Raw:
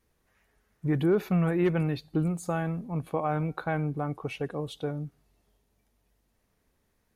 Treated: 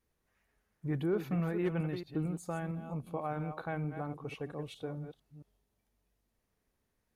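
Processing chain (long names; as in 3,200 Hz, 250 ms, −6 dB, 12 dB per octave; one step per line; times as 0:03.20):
delay that plays each chunk backwards 226 ms, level −9 dB
0:02.75–0:03.19: parametric band 1,800 Hz −11 dB 0.48 octaves
level −8 dB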